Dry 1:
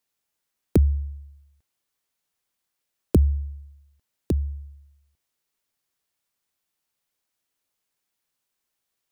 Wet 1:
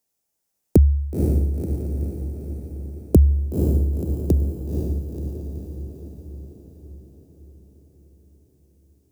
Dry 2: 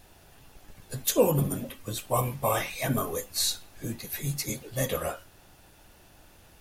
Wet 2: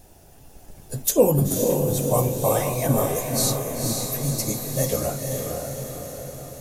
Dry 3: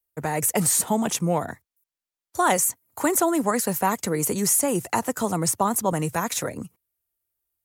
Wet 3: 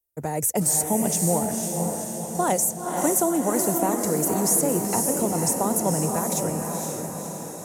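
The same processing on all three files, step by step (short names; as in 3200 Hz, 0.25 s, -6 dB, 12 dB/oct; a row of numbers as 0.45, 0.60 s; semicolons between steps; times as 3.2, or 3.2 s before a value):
band shelf 2100 Hz -8.5 dB 2.4 oct; on a send: diffused feedback echo 0.507 s, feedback 59%, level -3.5 dB; on the sum: match loudness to -23 LUFS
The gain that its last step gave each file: +4.5, +5.5, -0.5 dB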